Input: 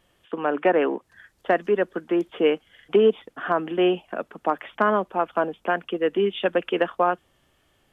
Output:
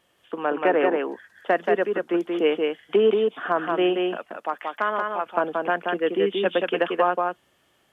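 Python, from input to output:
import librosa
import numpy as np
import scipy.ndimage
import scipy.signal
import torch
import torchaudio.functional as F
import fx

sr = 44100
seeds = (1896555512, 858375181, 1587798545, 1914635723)

y = fx.highpass(x, sr, hz=fx.steps((0.0, 250.0), (4.17, 1100.0), (5.26, 210.0)), slope=6)
y = y + 10.0 ** (-3.5 / 20.0) * np.pad(y, (int(180 * sr / 1000.0), 0))[:len(y)]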